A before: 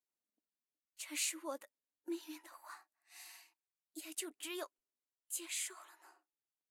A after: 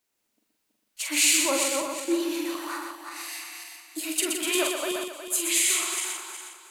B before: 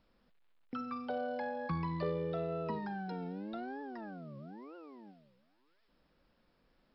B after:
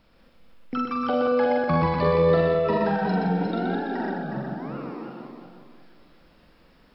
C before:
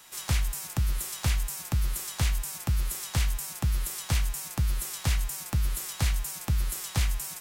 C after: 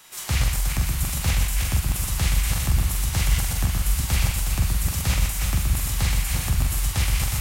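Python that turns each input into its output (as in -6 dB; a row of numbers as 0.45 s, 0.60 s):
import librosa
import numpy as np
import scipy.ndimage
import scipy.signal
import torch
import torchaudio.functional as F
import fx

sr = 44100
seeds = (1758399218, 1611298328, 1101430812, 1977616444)

p1 = fx.reverse_delay_fb(x, sr, ms=182, feedback_pct=55, wet_db=-3)
p2 = fx.peak_eq(p1, sr, hz=2400.0, db=2.0, octaves=0.77)
p3 = fx.doubler(p2, sr, ms=44.0, db=-4.5)
p4 = p3 + fx.echo_single(p3, sr, ms=123, db=-5.0, dry=0)
y = p4 * 10.0 ** (-9 / 20.0) / np.max(np.abs(p4))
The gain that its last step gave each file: +14.0 dB, +10.5 dB, +1.5 dB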